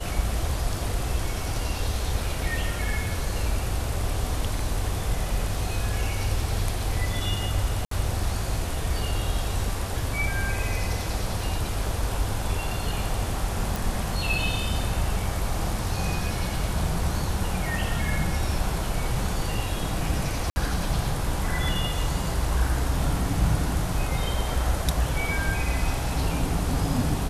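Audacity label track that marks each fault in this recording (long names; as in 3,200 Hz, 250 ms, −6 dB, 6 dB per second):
7.850000	7.910000	drop-out 63 ms
13.760000	13.760000	click
20.500000	20.560000	drop-out 60 ms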